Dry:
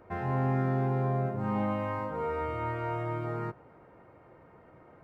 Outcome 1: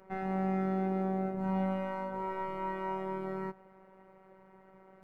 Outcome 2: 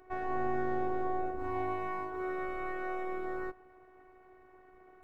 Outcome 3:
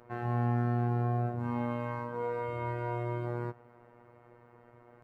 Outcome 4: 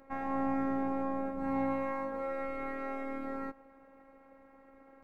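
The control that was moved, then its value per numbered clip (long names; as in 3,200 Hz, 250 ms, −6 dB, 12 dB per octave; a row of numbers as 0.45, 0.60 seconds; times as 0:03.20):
phases set to zero, frequency: 190, 370, 120, 270 Hertz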